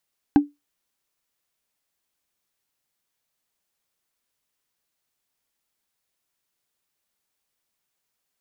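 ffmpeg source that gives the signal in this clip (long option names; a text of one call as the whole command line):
ffmpeg -f lavfi -i "aevalsrc='0.447*pow(10,-3*t/0.19)*sin(2*PI*290*t)+0.158*pow(10,-3*t/0.056)*sin(2*PI*799.5*t)+0.0562*pow(10,-3*t/0.025)*sin(2*PI*1567.2*t)+0.02*pow(10,-3*t/0.014)*sin(2*PI*2590.6*t)+0.00708*pow(10,-3*t/0.008)*sin(2*PI*3868.6*t)':duration=0.45:sample_rate=44100" out.wav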